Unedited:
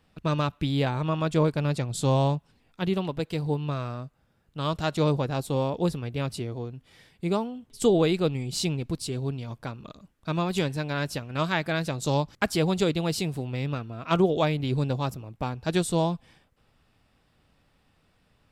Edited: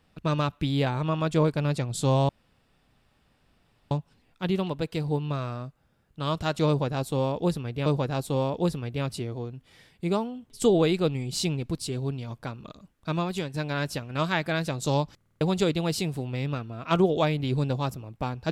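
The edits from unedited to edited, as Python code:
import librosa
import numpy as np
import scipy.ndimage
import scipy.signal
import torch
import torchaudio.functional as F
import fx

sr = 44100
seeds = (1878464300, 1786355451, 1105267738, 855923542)

y = fx.edit(x, sr, fx.insert_room_tone(at_s=2.29, length_s=1.62),
    fx.repeat(start_s=5.06, length_s=1.18, count=2),
    fx.fade_out_to(start_s=10.34, length_s=0.4, floor_db=-9.0),
    fx.stutter_over(start_s=12.36, slice_s=0.05, count=5), tone=tone)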